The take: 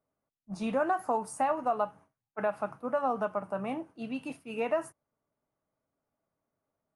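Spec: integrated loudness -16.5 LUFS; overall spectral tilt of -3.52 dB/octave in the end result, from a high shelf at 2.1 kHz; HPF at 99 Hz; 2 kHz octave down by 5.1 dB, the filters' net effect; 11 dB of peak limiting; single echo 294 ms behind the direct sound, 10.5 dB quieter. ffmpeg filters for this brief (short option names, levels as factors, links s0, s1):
-af "highpass=99,equalizer=f=2000:t=o:g=-4.5,highshelf=f=2100:g=-5.5,alimiter=level_in=1.78:limit=0.0631:level=0:latency=1,volume=0.562,aecho=1:1:294:0.299,volume=14.1"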